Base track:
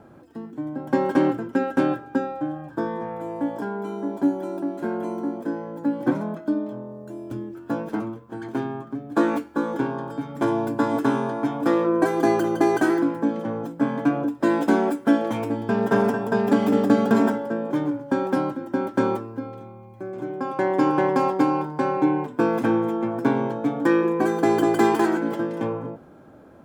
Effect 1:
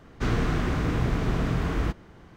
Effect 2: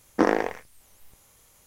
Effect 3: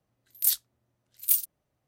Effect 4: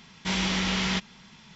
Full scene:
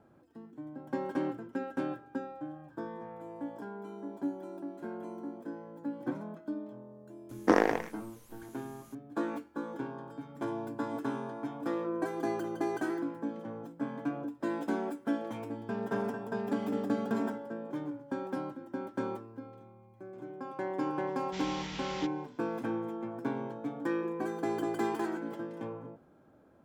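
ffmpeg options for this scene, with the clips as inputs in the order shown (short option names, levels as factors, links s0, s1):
-filter_complex "[0:a]volume=0.211[s0];[2:a]atrim=end=1.66,asetpts=PTS-STARTPTS,volume=0.708,afade=t=in:d=0.004:c=hsin,afade=t=out:st=1.656:d=0.004:c=hsin,adelay=7290[s1];[4:a]atrim=end=1.55,asetpts=PTS-STARTPTS,volume=0.188,afade=t=in:d=0.004:c=hsin,afade=t=out:st=1.546:d=0.004:c=hsin,adelay=21070[s2];[s0][s1][s2]amix=inputs=3:normalize=0"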